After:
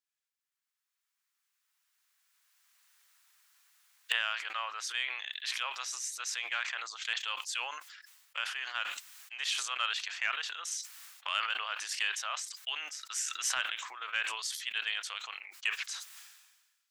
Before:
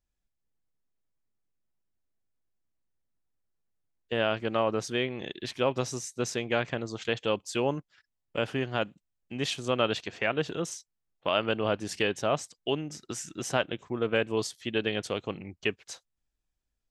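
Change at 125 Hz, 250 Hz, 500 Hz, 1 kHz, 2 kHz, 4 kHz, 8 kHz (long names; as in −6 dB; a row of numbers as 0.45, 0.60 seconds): below −40 dB, below −35 dB, −26.5 dB, −4.5 dB, +0.5 dB, +1.5 dB, +3.5 dB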